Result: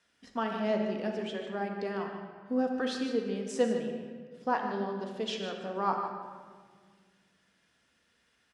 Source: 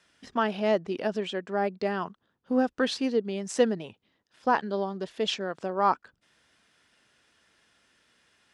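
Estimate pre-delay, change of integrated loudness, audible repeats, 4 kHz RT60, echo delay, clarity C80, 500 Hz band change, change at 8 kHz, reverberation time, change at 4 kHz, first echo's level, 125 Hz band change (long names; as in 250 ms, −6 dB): 4 ms, −4.5 dB, 1, 1.1 s, 151 ms, 4.5 dB, −4.5 dB, −6.0 dB, 1.7 s, −6.0 dB, −10.0 dB, −2.5 dB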